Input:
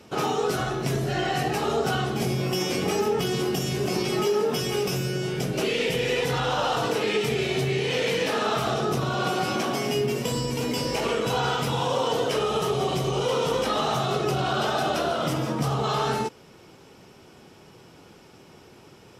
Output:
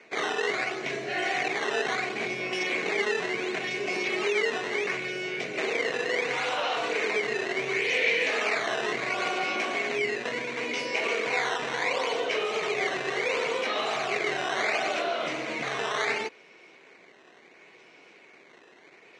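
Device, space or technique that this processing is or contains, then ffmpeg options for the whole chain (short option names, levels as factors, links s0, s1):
circuit-bent sampling toy: -af "acrusher=samples=11:mix=1:aa=0.000001:lfo=1:lforange=17.6:lforate=0.71,highpass=540,equalizer=f=540:t=q:w=4:g=-4,equalizer=f=860:t=q:w=4:g=-9,equalizer=f=1300:t=q:w=4:g=-8,equalizer=f=2200:t=q:w=4:g=9,equalizer=f=3300:t=q:w=4:g=-6,equalizer=f=5100:t=q:w=4:g=-9,lowpass=f=5700:w=0.5412,lowpass=f=5700:w=1.3066,volume=1.33"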